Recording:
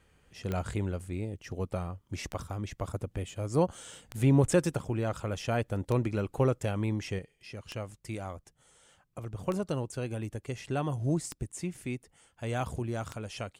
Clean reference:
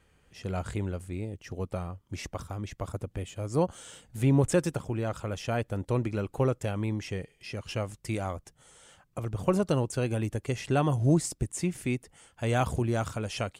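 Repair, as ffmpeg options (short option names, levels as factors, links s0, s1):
-af "adeclick=t=4,asetnsamples=n=441:p=0,asendcmd='7.19 volume volume 6dB',volume=1"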